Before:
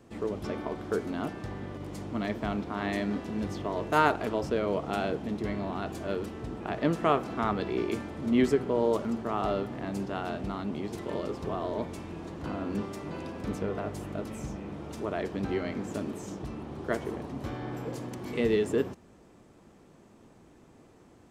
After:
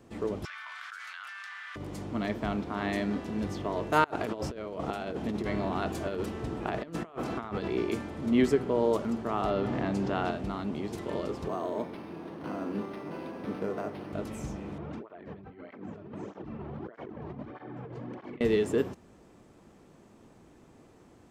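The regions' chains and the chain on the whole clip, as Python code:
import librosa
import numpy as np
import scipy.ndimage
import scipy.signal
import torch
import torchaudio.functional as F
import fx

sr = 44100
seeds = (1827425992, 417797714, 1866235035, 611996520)

y = fx.chain(x, sr, fx.steep_highpass(hz=1400.0, slope=36),
    fx.tilt_eq(slope=-4.0),
    fx.env_flatten(amount_pct=100), at=(0.45, 1.76))
y = fx.chain(y, sr, fx.hum_notches(base_hz=50, count=6),
    fx.over_compress(threshold_db=-33.0, ratio=-0.5), at=(4.04, 7.68))
y = fx.chain(y, sr, fx.highpass(hz=50.0, slope=12),
    fx.air_absorb(metres=59.0),
    fx.env_flatten(amount_pct=70), at=(9.5, 10.31))
y = fx.chain(y, sr, fx.highpass(hz=180.0, slope=12),
    fx.resample_linear(factor=6), at=(11.48, 14.13))
y = fx.chain(y, sr, fx.lowpass(hz=2200.0, slope=12),
    fx.over_compress(threshold_db=-40.0, ratio=-1.0),
    fx.flanger_cancel(hz=1.6, depth_ms=4.2), at=(14.78, 18.41))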